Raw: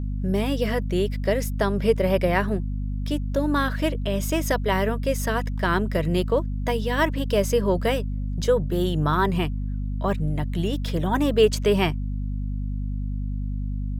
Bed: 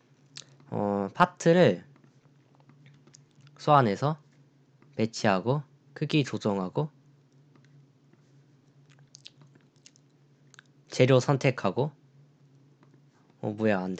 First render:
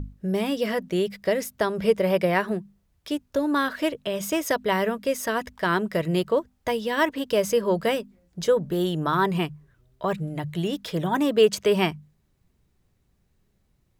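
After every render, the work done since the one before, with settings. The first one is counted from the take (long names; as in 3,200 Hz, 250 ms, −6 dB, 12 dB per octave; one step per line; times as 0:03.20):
mains-hum notches 50/100/150/200/250 Hz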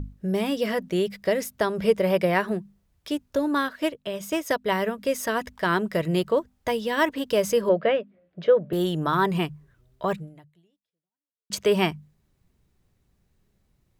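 0:03.48–0:04.98: expander for the loud parts, over −42 dBFS
0:07.69–0:08.73: loudspeaker in its box 180–3,000 Hz, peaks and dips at 250 Hz −5 dB, 600 Hz +9 dB, 900 Hz −7 dB
0:10.12–0:11.50: fade out exponential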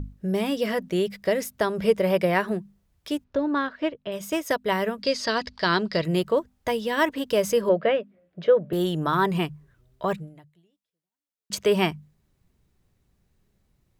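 0:03.24–0:04.12: high-frequency loss of the air 200 metres
0:05.02–0:06.04: low-pass with resonance 4,600 Hz, resonance Q 8.2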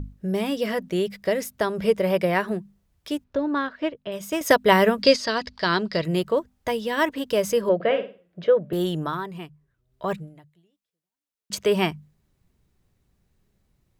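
0:04.41–0:05.16: clip gain +8 dB
0:07.75–0:08.44: flutter between parallel walls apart 8.8 metres, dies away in 0.35 s
0:08.96–0:10.13: duck −11.5 dB, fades 0.28 s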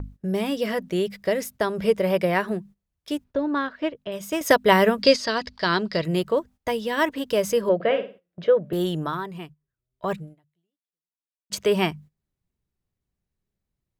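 noise gate −43 dBFS, range −15 dB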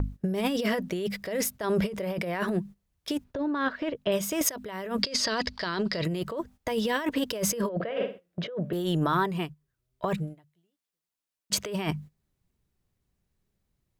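compressor whose output falls as the input rises −29 dBFS, ratio −1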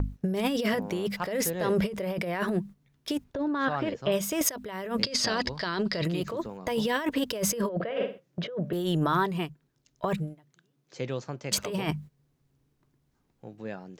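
mix in bed −12.5 dB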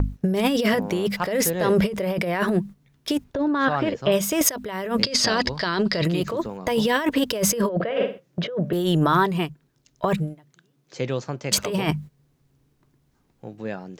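level +6.5 dB
brickwall limiter −2 dBFS, peak gain reduction 1 dB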